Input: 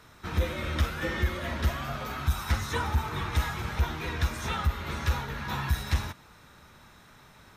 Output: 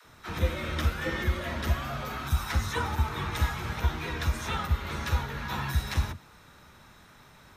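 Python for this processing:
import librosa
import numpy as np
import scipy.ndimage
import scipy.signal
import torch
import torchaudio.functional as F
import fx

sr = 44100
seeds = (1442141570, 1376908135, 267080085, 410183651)

y = fx.dispersion(x, sr, late='lows', ms=51.0, hz=360.0)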